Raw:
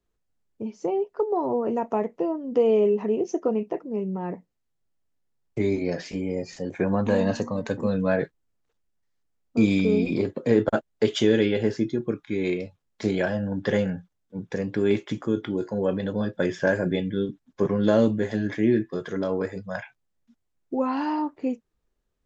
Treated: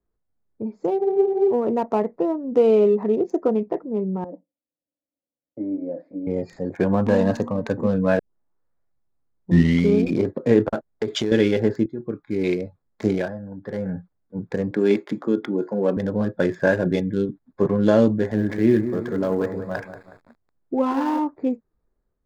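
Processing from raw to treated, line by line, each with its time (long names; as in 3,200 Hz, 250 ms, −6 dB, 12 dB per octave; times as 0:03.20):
0:01.00: frozen spectrum 0.53 s
0:04.24–0:06.27: pair of resonant band-passes 400 Hz, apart 0.85 octaves
0:08.19: tape start 1.78 s
0:10.64–0:11.32: downward compressor 8 to 1, threshold −22 dBFS
0:11.86–0:12.45: fade in, from −12.5 dB
0:13.13–0:13.97: duck −11.5 dB, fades 0.30 s quadratic
0:14.71–0:15.97: high-pass filter 170 Hz 24 dB per octave
0:18.13–0:21.19: feedback echo at a low word length 184 ms, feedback 55%, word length 7 bits, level −9.5 dB
whole clip: adaptive Wiener filter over 15 samples; automatic gain control gain up to 4 dB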